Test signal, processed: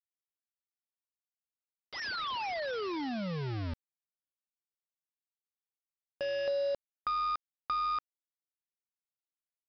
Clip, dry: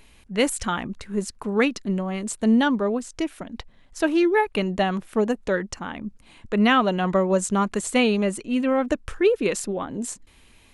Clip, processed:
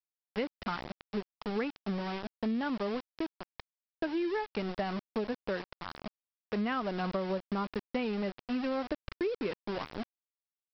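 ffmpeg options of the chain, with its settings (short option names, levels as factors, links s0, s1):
-af "lowpass=2300,aresample=11025,aeval=exprs='val(0)*gte(abs(val(0)),0.0473)':c=same,aresample=44100,acompressor=threshold=0.0708:ratio=6,volume=0.473"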